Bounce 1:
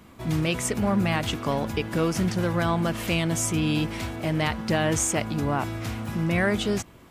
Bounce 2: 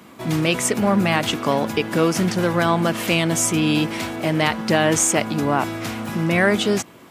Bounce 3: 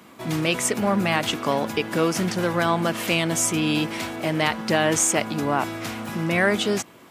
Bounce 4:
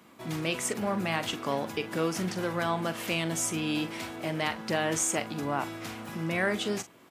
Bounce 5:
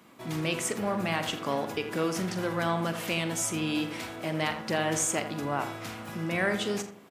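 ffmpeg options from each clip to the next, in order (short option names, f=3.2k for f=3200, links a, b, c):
-af "highpass=180,volume=7dB"
-af "lowshelf=f=320:g=-3.5,volume=-2dB"
-filter_complex "[0:a]asplit=2[a][b];[b]adelay=43,volume=-12.5dB[c];[a][c]amix=inputs=2:normalize=0,volume=-8dB"
-filter_complex "[0:a]asplit=2[a][b];[b]adelay=83,lowpass=f=1.9k:p=1,volume=-8.5dB,asplit=2[c][d];[d]adelay=83,lowpass=f=1.9k:p=1,volume=0.38,asplit=2[e][f];[f]adelay=83,lowpass=f=1.9k:p=1,volume=0.38,asplit=2[g][h];[h]adelay=83,lowpass=f=1.9k:p=1,volume=0.38[i];[a][c][e][g][i]amix=inputs=5:normalize=0"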